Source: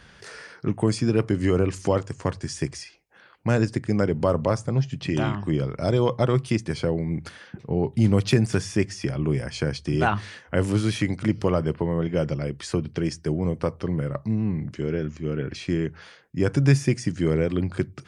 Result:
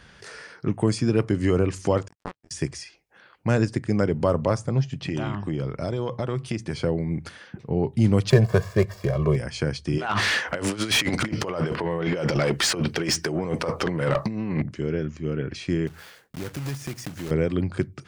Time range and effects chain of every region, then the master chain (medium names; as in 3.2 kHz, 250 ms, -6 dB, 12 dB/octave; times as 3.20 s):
2.08–2.51 s: power-law waveshaper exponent 3 + detune thickener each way 21 cents
4.91–6.80 s: compression, threshold -22 dBFS + treble shelf 8.8 kHz -4 dB
8.30–9.36 s: median filter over 15 samples + dynamic bell 760 Hz, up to +8 dB, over -39 dBFS, Q 0.89 + comb 1.8 ms, depth 94%
9.98–14.62 s: compressor with a negative ratio -29 dBFS, ratio -0.5 + overdrive pedal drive 23 dB, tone 5.5 kHz, clips at -12 dBFS
15.87–17.31 s: block-companded coder 3-bit + compression 2.5:1, threshold -34 dBFS
whole clip: none